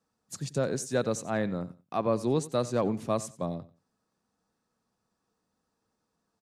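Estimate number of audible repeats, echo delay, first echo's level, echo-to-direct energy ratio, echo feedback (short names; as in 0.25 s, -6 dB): 2, 91 ms, -18.0 dB, -18.0 dB, 21%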